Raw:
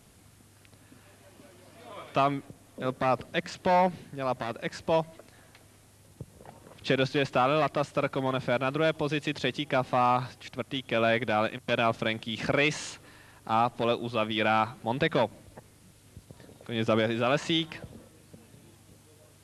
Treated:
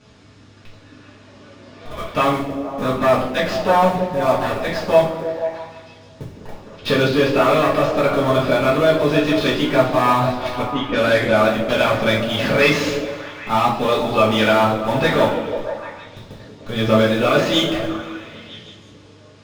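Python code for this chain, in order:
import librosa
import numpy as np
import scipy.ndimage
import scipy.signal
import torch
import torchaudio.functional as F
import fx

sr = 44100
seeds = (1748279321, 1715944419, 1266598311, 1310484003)

p1 = scipy.signal.sosfilt(scipy.signal.butter(4, 5700.0, 'lowpass', fs=sr, output='sos'), x)
p2 = fx.schmitt(p1, sr, flips_db=-37.0)
p3 = p1 + F.gain(torch.from_numpy(p2), -11.0).numpy()
p4 = fx.env_lowpass(p3, sr, base_hz=380.0, full_db=-21.5, at=(10.66, 11.41))
p5 = 10.0 ** (-17.5 / 20.0) * np.tanh(p4 / 10.0 ** (-17.5 / 20.0))
p6 = fx.echo_stepped(p5, sr, ms=160, hz=250.0, octaves=0.7, feedback_pct=70, wet_db=-3)
p7 = fx.rev_double_slope(p6, sr, seeds[0], early_s=0.42, late_s=2.2, knee_db=-18, drr_db=-8.0)
y = F.gain(torch.from_numpy(p7), 2.5).numpy()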